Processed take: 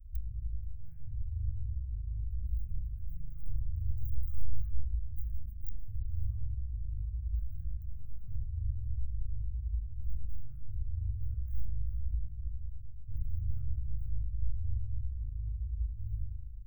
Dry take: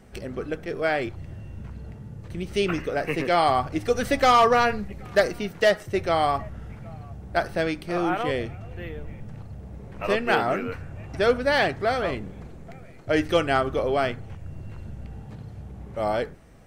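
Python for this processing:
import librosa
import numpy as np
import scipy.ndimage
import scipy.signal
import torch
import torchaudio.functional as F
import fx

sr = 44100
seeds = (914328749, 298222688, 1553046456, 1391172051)

y = fx.tracing_dist(x, sr, depth_ms=0.059)
y = scipy.signal.sosfilt(scipy.signal.cheby2(4, 70, [280.0, 8300.0], 'bandstop', fs=sr, output='sos'), y)
y = fx.rev_spring(y, sr, rt60_s=1.1, pass_ms=(38,), chirp_ms=75, drr_db=-1.0)
y = y * librosa.db_to_amplitude(9.5)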